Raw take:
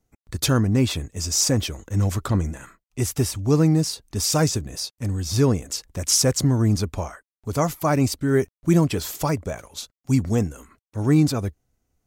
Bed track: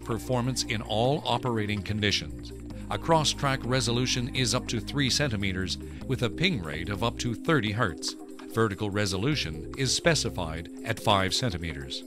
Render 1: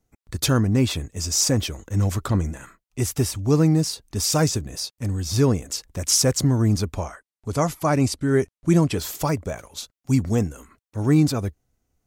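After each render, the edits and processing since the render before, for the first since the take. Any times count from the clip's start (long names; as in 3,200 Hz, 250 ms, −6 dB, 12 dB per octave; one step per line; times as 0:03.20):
0:06.98–0:08.99: Butterworth low-pass 12,000 Hz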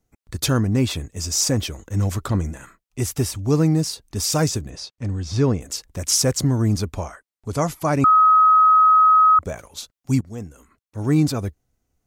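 0:04.70–0:05.61: high-frequency loss of the air 98 metres
0:08.04–0:09.39: beep over 1,270 Hz −10 dBFS
0:10.21–0:11.23: fade in, from −18 dB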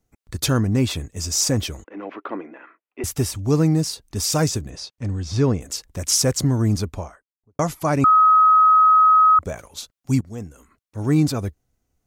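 0:01.84–0:03.04: elliptic band-pass filter 300–2,600 Hz, stop band 50 dB
0:06.73–0:07.59: fade out and dull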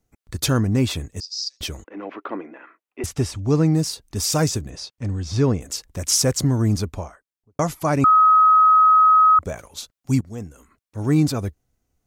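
0:01.20–0:01.61: flat-topped band-pass 4,600 Hz, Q 4
0:03.06–0:03.74: high-frequency loss of the air 57 metres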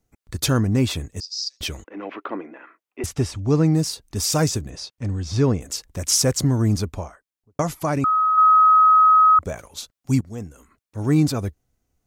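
0:01.66–0:02.26: dynamic equaliser 2,800 Hz, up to +6 dB, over −48 dBFS, Q 1
0:03.15–0:03.64: high-shelf EQ 8,500 Hz −5 dB
0:07.61–0:08.38: downward compressor, threshold −17 dBFS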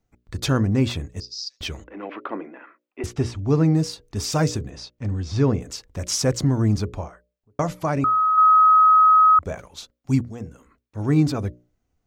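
parametric band 12,000 Hz −12.5 dB 1.4 octaves
mains-hum notches 60/120/180/240/300/360/420/480/540/600 Hz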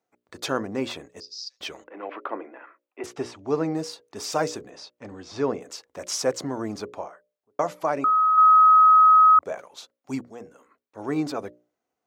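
high-pass filter 540 Hz 12 dB per octave
tilt shelving filter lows +5 dB, about 1,200 Hz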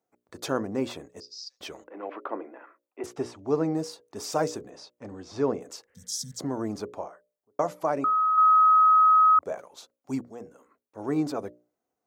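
0:05.90–0:06.37: healed spectral selection 240–3,100 Hz before
parametric band 2,700 Hz −7 dB 2.3 octaves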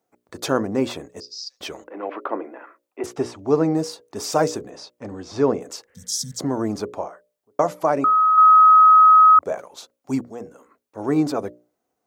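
level +7 dB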